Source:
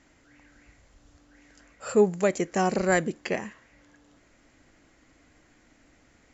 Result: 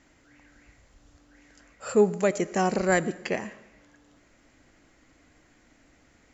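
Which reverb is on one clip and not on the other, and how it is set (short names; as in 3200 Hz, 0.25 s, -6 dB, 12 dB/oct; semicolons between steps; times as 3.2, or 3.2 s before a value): digital reverb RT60 0.93 s, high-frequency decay 0.9×, pre-delay 45 ms, DRR 17.5 dB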